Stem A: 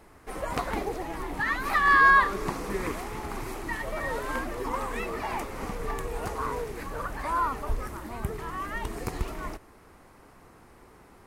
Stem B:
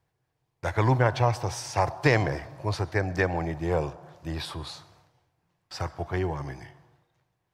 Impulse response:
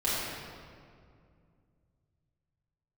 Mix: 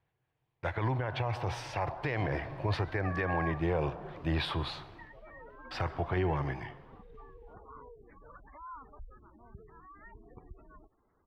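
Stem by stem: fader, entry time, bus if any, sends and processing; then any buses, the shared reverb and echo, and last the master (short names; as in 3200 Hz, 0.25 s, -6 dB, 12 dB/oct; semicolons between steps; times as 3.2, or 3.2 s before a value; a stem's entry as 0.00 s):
-18.5 dB, 1.30 s, no send, spectral gate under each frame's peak -15 dB strong
-1.0 dB, 0.00 s, no send, resonant high shelf 4500 Hz -14 dB, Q 1.5; vocal rider within 4 dB 0.5 s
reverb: off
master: limiter -21.5 dBFS, peak gain reduction 11 dB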